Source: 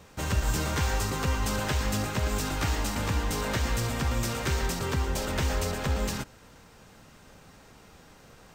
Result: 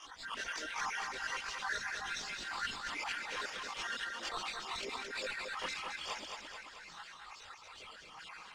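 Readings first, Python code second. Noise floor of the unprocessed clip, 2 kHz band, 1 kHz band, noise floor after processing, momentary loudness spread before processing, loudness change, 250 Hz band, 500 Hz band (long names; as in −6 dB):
−54 dBFS, −3.0 dB, −7.0 dB, −54 dBFS, 2 LU, −10.5 dB, −23.0 dB, −15.0 dB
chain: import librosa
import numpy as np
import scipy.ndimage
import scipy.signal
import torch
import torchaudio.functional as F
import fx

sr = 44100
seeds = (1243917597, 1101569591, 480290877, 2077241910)

y = fx.spec_dropout(x, sr, seeds[0], share_pct=72)
y = scipy.signal.sosfilt(scipy.signal.butter(2, 250.0, 'highpass', fs=sr, output='sos'), y)
y = fx.peak_eq(y, sr, hz=610.0, db=-7.5, octaves=0.94)
y = fx.filter_lfo_highpass(y, sr, shape='saw_down', hz=7.8, low_hz=550.0, high_hz=1800.0, q=0.99)
y = fx.sample_hold(y, sr, seeds[1], rate_hz=12000.0, jitter_pct=0)
y = y * (1.0 - 0.71 / 2.0 + 0.71 / 2.0 * np.cos(2.0 * np.pi * 2.3 * (np.arange(len(y)) / sr)))
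y = fx.chorus_voices(y, sr, voices=4, hz=0.38, base_ms=21, depth_ms=3.2, mix_pct=70)
y = fx.air_absorb(y, sr, metres=100.0)
y = fx.echo_feedback(y, sr, ms=218, feedback_pct=37, wet_db=-9)
y = fx.env_flatten(y, sr, amount_pct=50)
y = y * 10.0 ** (3.0 / 20.0)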